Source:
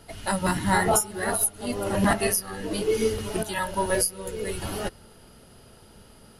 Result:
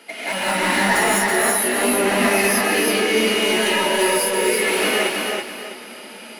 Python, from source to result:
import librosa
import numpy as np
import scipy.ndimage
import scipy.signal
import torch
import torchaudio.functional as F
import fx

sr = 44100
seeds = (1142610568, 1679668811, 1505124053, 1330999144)

p1 = scipy.signal.sosfilt(scipy.signal.cheby1(4, 1.0, 230.0, 'highpass', fs=sr, output='sos'), x)
p2 = fx.peak_eq(p1, sr, hz=2300.0, db=14.0, octaves=0.73)
p3 = fx.over_compress(p2, sr, threshold_db=-31.0, ratio=-1.0)
p4 = p2 + (p3 * librosa.db_to_amplitude(1.5))
p5 = np.clip(10.0 ** (17.0 / 20.0) * p4, -1.0, 1.0) / 10.0 ** (17.0 / 20.0)
p6 = p5 + fx.echo_feedback(p5, sr, ms=327, feedback_pct=32, wet_db=-3.0, dry=0)
p7 = fx.rev_gated(p6, sr, seeds[0], gate_ms=230, shape='rising', drr_db=-8.0)
y = p7 * librosa.db_to_amplitude(-6.0)